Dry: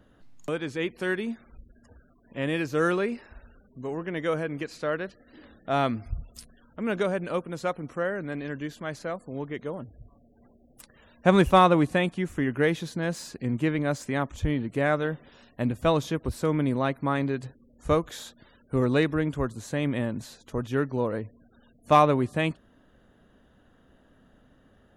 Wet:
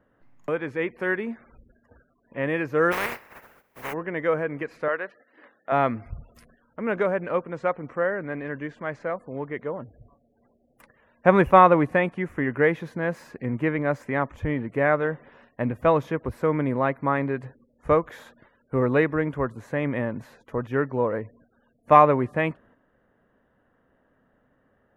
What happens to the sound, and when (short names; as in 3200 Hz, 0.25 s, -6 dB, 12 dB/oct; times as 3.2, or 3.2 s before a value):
2.91–3.92 spectral contrast lowered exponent 0.17
4.88–5.72 weighting filter A
7.14–9.1 steep low-pass 8500 Hz
whole clip: gate -54 dBFS, range -7 dB; graphic EQ 125/250/500/1000/2000/4000/8000 Hz +5/+3/+8/+8/+11/-8/-9 dB; gain -6 dB